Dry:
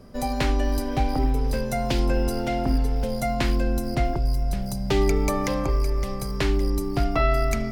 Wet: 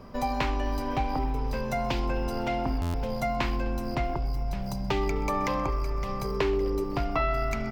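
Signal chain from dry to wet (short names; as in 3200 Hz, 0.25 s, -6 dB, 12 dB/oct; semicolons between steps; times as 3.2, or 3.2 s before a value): 6.24–6.84 bell 420 Hz +12.5 dB 0.55 oct; compressor 2:1, threshold -31 dBFS, peak gain reduction 9.5 dB; fifteen-band EQ 1000 Hz +10 dB, 2500 Hz +5 dB, 10000 Hz -11 dB; frequency-shifting echo 0.128 s, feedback 64%, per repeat +55 Hz, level -20.5 dB; stuck buffer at 2.81, samples 512, times 10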